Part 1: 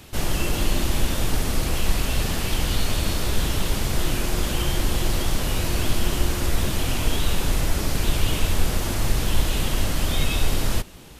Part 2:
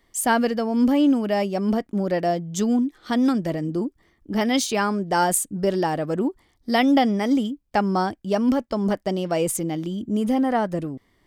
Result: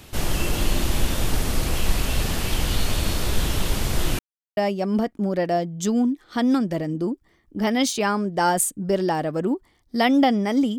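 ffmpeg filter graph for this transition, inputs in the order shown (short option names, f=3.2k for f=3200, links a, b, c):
-filter_complex "[0:a]apad=whole_dur=10.78,atrim=end=10.78,asplit=2[a][b];[a]atrim=end=4.19,asetpts=PTS-STARTPTS,afade=t=out:st=4.186:d=0.004:c=hsin[c];[b]atrim=start=4.19:end=4.57,asetpts=PTS-STARTPTS,volume=0[d];[1:a]atrim=start=1.31:end=7.52,asetpts=PTS-STARTPTS,afade=t=in:d=0.004:c=hsin[e];[c][d][e]concat=n=3:v=0:a=1"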